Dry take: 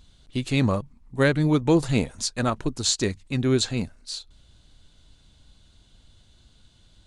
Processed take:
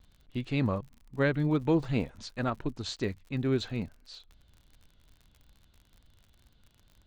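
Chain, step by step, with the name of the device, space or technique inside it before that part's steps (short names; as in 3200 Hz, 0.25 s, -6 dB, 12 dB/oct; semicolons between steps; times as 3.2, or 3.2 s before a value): lo-fi chain (LPF 3100 Hz 12 dB/oct; wow and flutter; crackle 54/s -39 dBFS); gain -6.5 dB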